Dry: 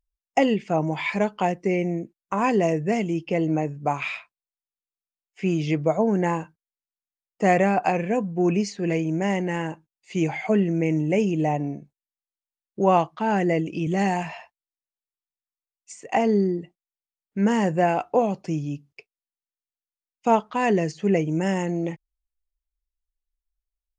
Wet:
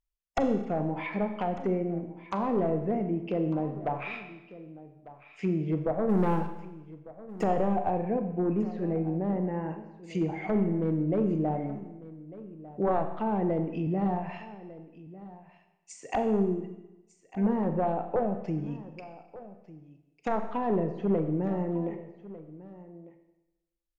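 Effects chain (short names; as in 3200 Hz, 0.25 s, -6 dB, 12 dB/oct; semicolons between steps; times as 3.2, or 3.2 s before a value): one-sided fold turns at -15 dBFS; treble ducked by the level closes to 870 Hz, closed at -21 dBFS; 6.09–7.44 sample leveller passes 2; 8.79–9.67 high shelf 3200 Hz -12 dB; echo 1.199 s -17.5 dB; Schroeder reverb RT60 1 s, combs from 29 ms, DRR 7 dB; gain -5 dB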